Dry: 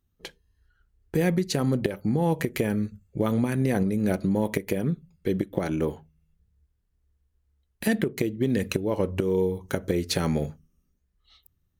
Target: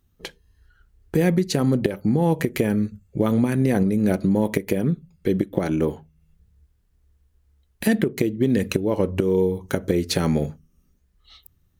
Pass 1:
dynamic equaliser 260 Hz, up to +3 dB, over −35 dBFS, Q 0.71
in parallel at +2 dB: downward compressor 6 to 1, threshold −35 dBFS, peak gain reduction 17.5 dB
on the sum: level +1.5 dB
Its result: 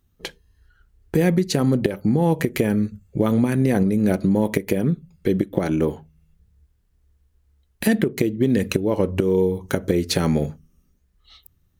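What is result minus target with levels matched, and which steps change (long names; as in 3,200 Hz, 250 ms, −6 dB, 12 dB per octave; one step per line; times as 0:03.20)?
downward compressor: peak gain reduction −8.5 dB
change: downward compressor 6 to 1, threshold −45 dBFS, peak gain reduction 26 dB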